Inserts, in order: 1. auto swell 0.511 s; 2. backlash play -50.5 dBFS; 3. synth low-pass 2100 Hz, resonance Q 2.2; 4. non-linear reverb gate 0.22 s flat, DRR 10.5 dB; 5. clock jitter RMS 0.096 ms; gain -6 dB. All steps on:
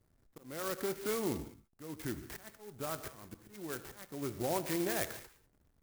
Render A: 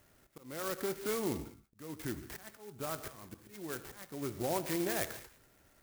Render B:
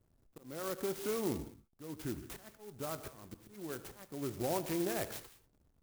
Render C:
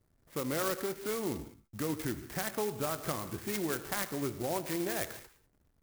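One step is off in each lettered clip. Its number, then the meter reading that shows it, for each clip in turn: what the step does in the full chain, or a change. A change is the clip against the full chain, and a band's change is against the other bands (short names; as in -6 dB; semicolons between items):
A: 2, distortion -23 dB; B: 3, 2 kHz band -3.5 dB; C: 1, momentary loudness spread change -12 LU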